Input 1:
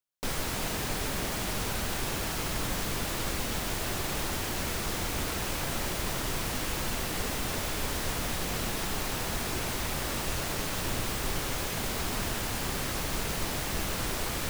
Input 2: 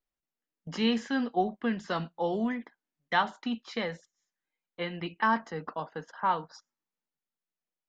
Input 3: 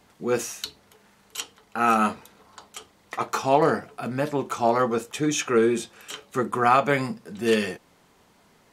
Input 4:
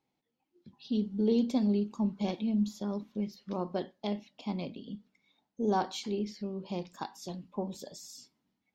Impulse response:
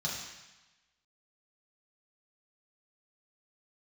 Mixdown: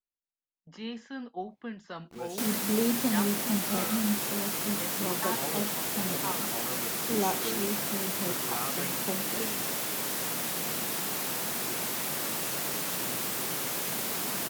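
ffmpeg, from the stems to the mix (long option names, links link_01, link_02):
-filter_complex "[0:a]highpass=frequency=150:width=0.5412,highpass=frequency=150:width=1.3066,equalizer=frequency=15000:width=0.41:gain=9.5,adelay=2150,volume=-2dB[link_01];[1:a]dynaudnorm=framelen=140:gausssize=13:maxgain=4.5dB,volume=-14dB[link_02];[2:a]equalizer=frequency=780:width=0.35:gain=-6,acrusher=bits=5:mix=0:aa=0.000001,adelay=1900,volume=-14dB[link_03];[3:a]adelay=1500,volume=-0.5dB[link_04];[link_01][link_02][link_03][link_04]amix=inputs=4:normalize=0"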